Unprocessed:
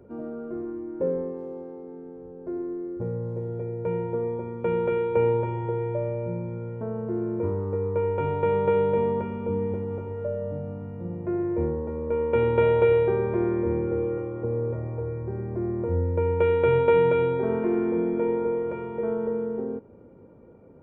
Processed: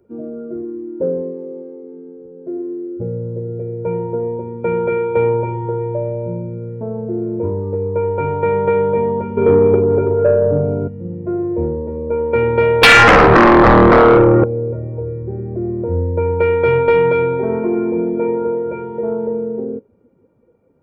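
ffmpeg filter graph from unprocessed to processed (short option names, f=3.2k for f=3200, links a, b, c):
-filter_complex "[0:a]asettb=1/sr,asplit=3[a][b][c];[a]atrim=end=9.374[d];[b]atrim=start=9.37:end=10.88,asetpts=PTS-STARTPTS,afade=t=in:d=0.004:c=qsin,afade=t=out:st=1.506:d=0.004:c=qsin,equalizer=f=400:t=o:w=0.41:g=13.5,aecho=1:1:7.2:0.54,atrim=end_sample=66591,acontrast=87[e];[c]atrim=start=10.876[f];[d][e]acrossfade=d=0.004:c1=hsin:c2=qsin[g];[g][f]acrossfade=d=0.004:c1=qsin:c2=hsin,asettb=1/sr,asplit=3[h][i][j];[h]atrim=end=12.834[k];[i]atrim=start=12.83:end=14.44,asetpts=PTS-STARTPTS,afade=t=in:d=0.004:c=qsin,afade=t=out:st=1.606:d=0.004:c=qsin,lowpass=1.7k,bandreject=f=740:w=5.4,aeval=exprs='0.282*sin(PI/2*5.62*val(0)/0.282)':c=same[l];[j]atrim=start=14.436[m];[k][l]acrossfade=d=0.004:c1=hsin:c2=qsin[n];[n][m]acrossfade=d=0.004:c1=qsin:c2=hsin,afftdn=nr=16:nf=-34,highshelf=f=2.2k:g=10.5,acontrast=73"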